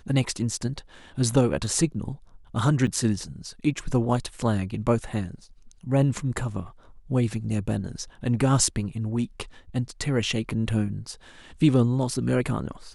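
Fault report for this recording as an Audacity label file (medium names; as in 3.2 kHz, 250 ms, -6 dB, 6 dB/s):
2.870000	2.880000	dropout 7 ms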